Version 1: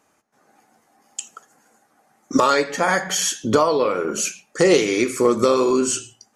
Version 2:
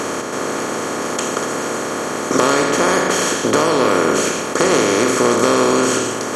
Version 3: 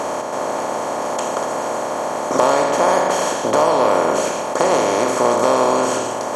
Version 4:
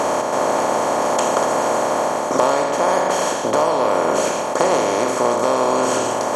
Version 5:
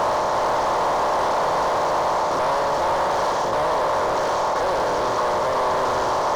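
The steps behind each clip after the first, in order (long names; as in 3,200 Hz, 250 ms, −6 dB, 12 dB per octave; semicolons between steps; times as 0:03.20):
compressor on every frequency bin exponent 0.2; level −5.5 dB
flat-topped bell 750 Hz +11.5 dB 1.1 octaves; level −6 dB
speech leveller within 4 dB 0.5 s
linear delta modulator 32 kbit/s, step −30.5 dBFS; hard clipping −23 dBFS, distortion −7 dB; graphic EQ with 15 bands 250 Hz −9 dB, 1,000 Hz +6 dB, 2,500 Hz −9 dB; level +2.5 dB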